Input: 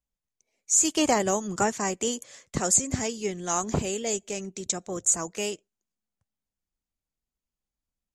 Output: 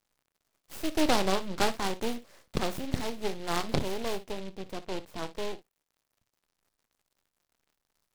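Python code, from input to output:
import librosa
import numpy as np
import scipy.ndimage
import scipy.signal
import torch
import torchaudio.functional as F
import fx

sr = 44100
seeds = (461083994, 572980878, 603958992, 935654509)

y = fx.lowpass(x, sr, hz=fx.steps((0.0, 2300.0), (4.32, 1100.0)), slope=12)
y = fx.dmg_crackle(y, sr, seeds[0], per_s=350.0, level_db=-60.0)
y = np.maximum(y, 0.0)
y = fx.room_early_taps(y, sr, ms=(26, 59), db=(-15.0, -15.0))
y = fx.noise_mod_delay(y, sr, seeds[1], noise_hz=2800.0, depth_ms=0.096)
y = y * librosa.db_to_amplitude(1.5)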